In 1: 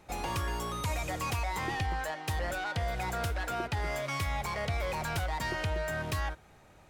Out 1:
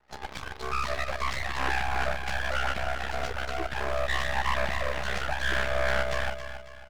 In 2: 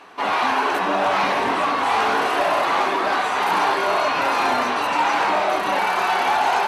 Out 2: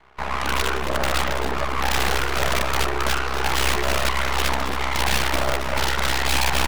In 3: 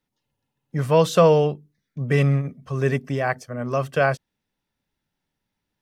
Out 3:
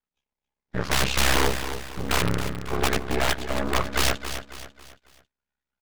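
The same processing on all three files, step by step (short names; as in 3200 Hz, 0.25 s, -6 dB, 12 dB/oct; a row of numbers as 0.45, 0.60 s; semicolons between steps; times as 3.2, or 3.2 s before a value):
nonlinear frequency compression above 1300 Hz 1.5:1; spectral noise reduction 12 dB; bell 100 Hz -3.5 dB 0.52 oct; comb 4.8 ms, depth 98%; dynamic EQ 560 Hz, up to -6 dB, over -30 dBFS, Q 1.1; in parallel at -10.5 dB: companded quantiser 2-bit; on the sum: overdrive pedal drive 11 dB, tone 2100 Hz, clips at -1.5 dBFS; wrapped overs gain 13.5 dB; ring modulator 33 Hz; half-wave rectifier; on a send: feedback echo 0.273 s, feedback 40%, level -10 dB; on the sum: Doppler distortion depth 0.4 ms; gain +3.5 dB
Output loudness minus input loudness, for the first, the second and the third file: +3.5, -3.0, -4.0 LU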